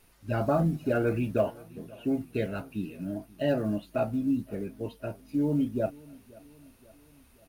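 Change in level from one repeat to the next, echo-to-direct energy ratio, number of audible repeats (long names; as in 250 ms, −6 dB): −5.0 dB, −21.5 dB, 3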